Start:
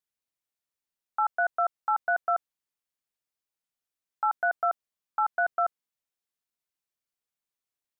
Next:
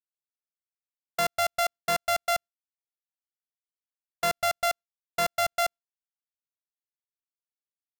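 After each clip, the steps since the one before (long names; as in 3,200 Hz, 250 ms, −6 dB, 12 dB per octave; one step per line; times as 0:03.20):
samples sorted by size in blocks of 64 samples
downward expander −33 dBFS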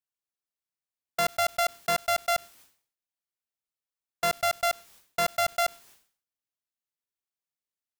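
level that may fall only so fast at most 120 dB per second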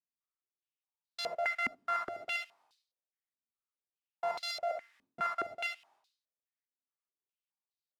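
reverb whose tail is shaped and stops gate 90 ms rising, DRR 0 dB
band-pass on a step sequencer 4.8 Hz 250–4,200 Hz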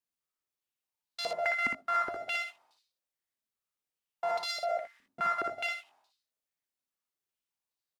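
ambience of single reflections 60 ms −4.5 dB, 79 ms −11.5 dB
level +1.5 dB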